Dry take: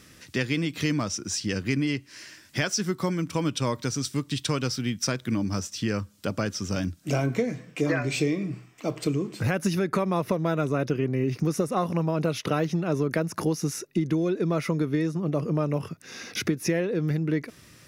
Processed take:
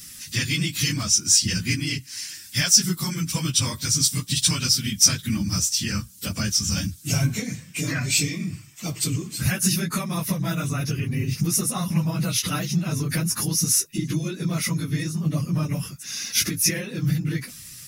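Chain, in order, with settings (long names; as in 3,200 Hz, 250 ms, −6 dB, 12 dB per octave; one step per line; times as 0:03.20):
random phases in long frames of 50 ms
drawn EQ curve 170 Hz 0 dB, 440 Hz −16 dB, 10,000 Hz +15 dB
level +4 dB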